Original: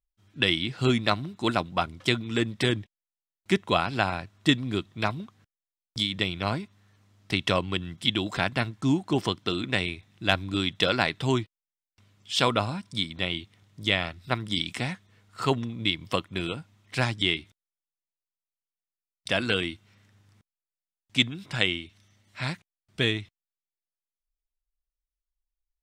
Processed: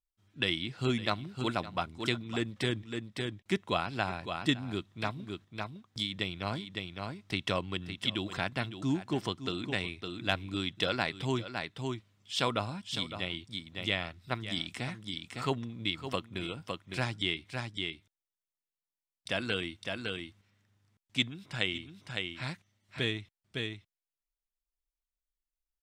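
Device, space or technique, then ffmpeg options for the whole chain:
ducked delay: -filter_complex "[0:a]asplit=3[link_01][link_02][link_03];[link_02]adelay=559,volume=-4dB[link_04];[link_03]apad=whole_len=1163525[link_05];[link_04][link_05]sidechaincompress=threshold=-32dB:ratio=12:attack=5.6:release=227[link_06];[link_01][link_06]amix=inputs=2:normalize=0,volume=-7dB"

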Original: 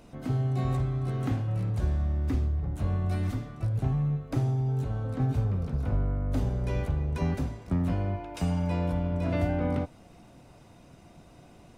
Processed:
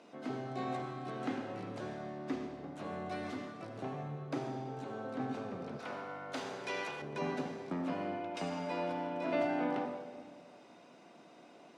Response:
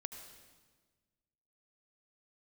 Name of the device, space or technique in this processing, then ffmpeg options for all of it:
supermarket ceiling speaker: -filter_complex "[0:a]highpass=240,lowpass=5500[link_01];[1:a]atrim=start_sample=2205[link_02];[link_01][link_02]afir=irnorm=-1:irlink=0,highpass=220,asettb=1/sr,asplit=3[link_03][link_04][link_05];[link_03]atrim=end=5.794[link_06];[link_04]atrim=start=5.79:end=7.02,asetpts=PTS-STARTPTS,afade=type=in:duration=0.004:curve=qsin,afade=type=out:start_time=1.226:duration=0.004:curve=qsin,tiltshelf=frequency=720:gain=-8.5[link_07];[link_05]atrim=start=7.016[link_08];[link_06][link_07]acrossfade=duration=0.004:curve1=hsin:curve2=qsin[link_09];[link_09][link_08]acrossfade=duration=0.004:curve1=qsin:curve2=hsin,volume=2.5dB"

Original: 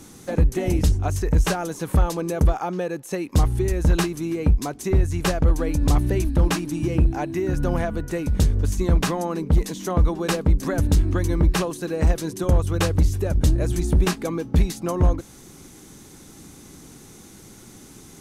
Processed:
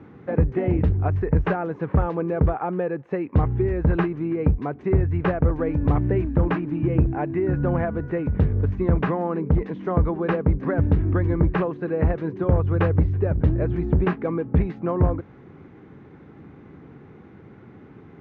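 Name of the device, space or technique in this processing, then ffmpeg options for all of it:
bass cabinet: -af "highpass=72,equalizer=frequency=91:width_type=q:width=4:gain=4,equalizer=frequency=140:width_type=q:width=4:gain=4,equalizer=frequency=440:width_type=q:width=4:gain=4,lowpass=frequency=2100:width=0.5412,lowpass=frequency=2100:width=1.3066"

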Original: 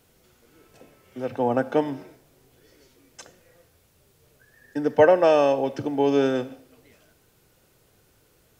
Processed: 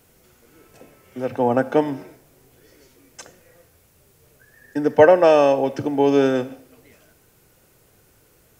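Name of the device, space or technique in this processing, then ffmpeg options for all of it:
exciter from parts: -filter_complex "[0:a]asplit=2[link_01][link_02];[link_02]highpass=frequency=2200:width=0.5412,highpass=frequency=2200:width=1.3066,asoftclip=type=tanh:threshold=-37dB,highpass=3100,volume=-9dB[link_03];[link_01][link_03]amix=inputs=2:normalize=0,volume=4dB"

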